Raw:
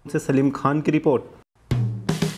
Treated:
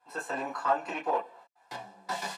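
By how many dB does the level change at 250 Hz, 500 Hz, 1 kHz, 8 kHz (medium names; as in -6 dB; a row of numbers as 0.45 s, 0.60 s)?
-23.0 dB, -11.5 dB, -1.0 dB, no reading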